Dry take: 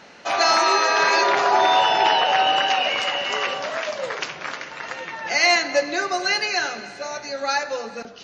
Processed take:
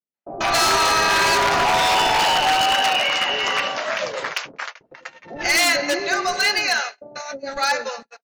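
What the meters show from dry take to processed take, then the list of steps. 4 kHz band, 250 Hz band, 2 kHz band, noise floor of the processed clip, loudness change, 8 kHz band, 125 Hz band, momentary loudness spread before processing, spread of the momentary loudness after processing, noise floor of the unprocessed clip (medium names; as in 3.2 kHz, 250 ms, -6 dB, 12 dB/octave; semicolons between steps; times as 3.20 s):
+2.5 dB, +2.0 dB, +1.5 dB, -66 dBFS, +1.5 dB, +5.0 dB, +9.5 dB, 14 LU, 16 LU, -40 dBFS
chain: gate -29 dBFS, range -54 dB; wavefolder -15 dBFS; bands offset in time lows, highs 140 ms, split 530 Hz; trim +3.5 dB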